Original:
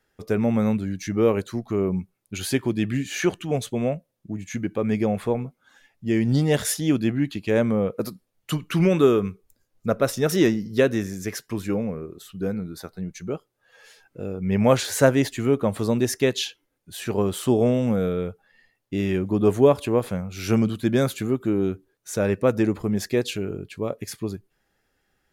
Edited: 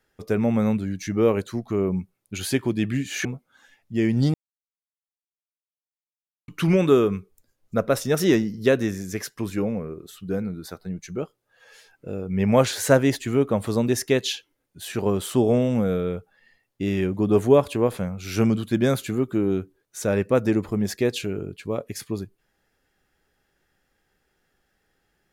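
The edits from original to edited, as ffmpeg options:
ffmpeg -i in.wav -filter_complex "[0:a]asplit=4[link_01][link_02][link_03][link_04];[link_01]atrim=end=3.252[link_05];[link_02]atrim=start=5.368:end=6.46,asetpts=PTS-STARTPTS,afade=type=out:start_time=1.088:duration=0.004:curve=hsin[link_06];[link_03]atrim=start=6.46:end=8.6,asetpts=PTS-STARTPTS,volume=0[link_07];[link_04]atrim=start=8.6,asetpts=PTS-STARTPTS,afade=type=in:duration=0.004:curve=hsin[link_08];[link_06][link_07][link_08]concat=n=3:v=0:a=1[link_09];[link_05][link_09]acrossfade=duration=0.004:curve1=hsin:curve2=hsin" out.wav

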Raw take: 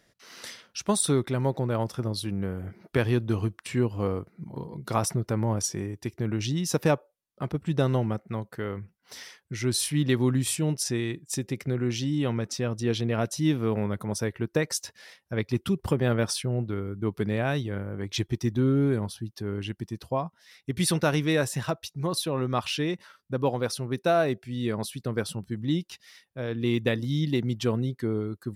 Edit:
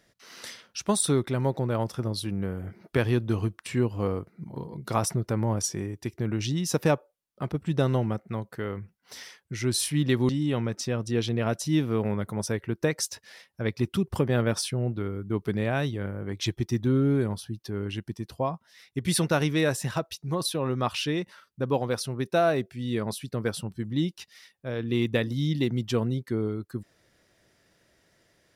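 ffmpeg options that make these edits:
ffmpeg -i in.wav -filter_complex "[0:a]asplit=2[link_01][link_02];[link_01]atrim=end=10.292[link_03];[link_02]atrim=start=12.008[link_04];[link_03][link_04]acrossfade=duration=0.004:curve1=hsin:curve2=hsin" out.wav

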